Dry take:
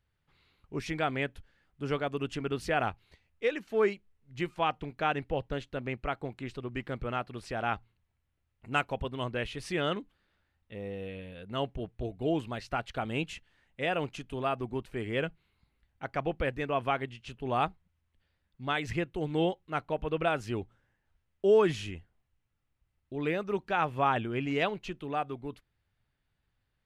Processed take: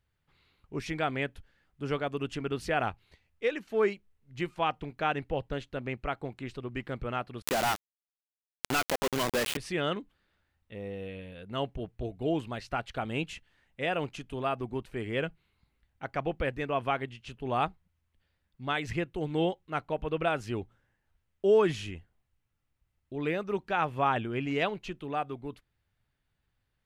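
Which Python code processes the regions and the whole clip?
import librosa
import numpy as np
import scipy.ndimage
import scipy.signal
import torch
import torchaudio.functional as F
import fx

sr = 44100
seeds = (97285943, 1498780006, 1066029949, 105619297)

y = fx.chain(x, sr, fx.highpass(hz=180.0, slope=24),
    fx.quant_companded(bits=2),
    fx.pre_swell(db_per_s=96.0), at=(7.42, 9.57))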